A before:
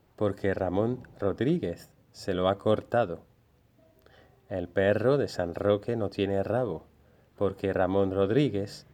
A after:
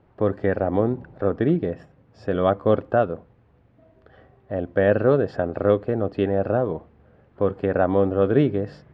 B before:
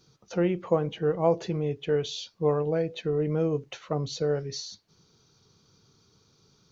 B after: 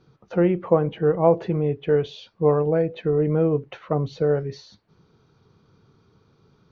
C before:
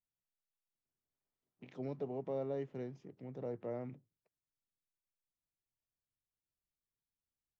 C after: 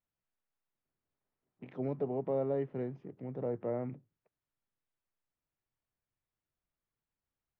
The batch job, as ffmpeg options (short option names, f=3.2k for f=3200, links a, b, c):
-af "lowpass=2k,volume=6dB"